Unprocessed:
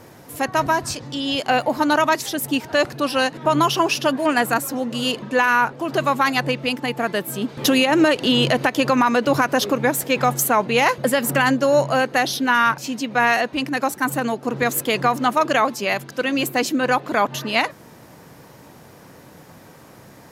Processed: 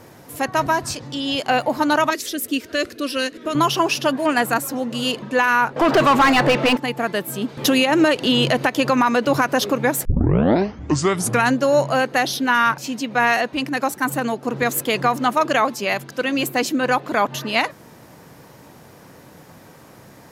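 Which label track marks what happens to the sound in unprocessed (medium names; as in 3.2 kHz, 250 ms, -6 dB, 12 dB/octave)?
2.100000	3.550000	static phaser centre 350 Hz, stages 4
5.760000	6.770000	overdrive pedal drive 27 dB, tone 1.8 kHz, clips at -6 dBFS
10.050000	10.050000	tape start 1.50 s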